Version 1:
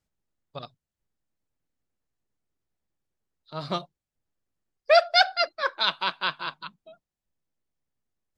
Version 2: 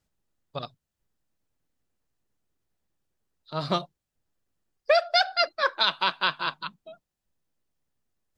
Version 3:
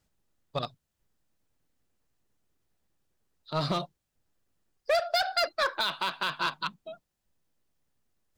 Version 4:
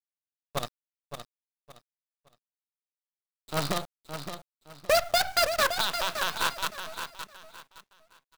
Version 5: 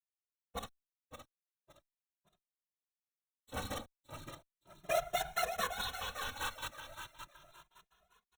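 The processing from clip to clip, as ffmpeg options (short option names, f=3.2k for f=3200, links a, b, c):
-af "acompressor=threshold=-22dB:ratio=6,bandreject=f=2.2k:w=25,volume=4dB"
-filter_complex "[0:a]asplit=2[a][b];[b]aeval=exprs='0.0562*(abs(mod(val(0)/0.0562+3,4)-2)-1)':c=same,volume=-8dB[c];[a][c]amix=inputs=2:normalize=0,alimiter=limit=-17.5dB:level=0:latency=1:release=47"
-af "acrusher=bits=5:dc=4:mix=0:aa=0.000001,aecho=1:1:566|1132|1698:0.355|0.0958|0.0259,volume=1.5dB"
-filter_complex "[0:a]afftfilt=real='hypot(re,im)*cos(2*PI*random(0))':imag='hypot(re,im)*sin(2*PI*random(1))':win_size=512:overlap=0.75,asuperstop=centerf=4800:order=12:qfactor=4.3,asplit=2[a][b];[b]adelay=2.4,afreqshift=0.37[c];[a][c]amix=inputs=2:normalize=1,volume=-2dB"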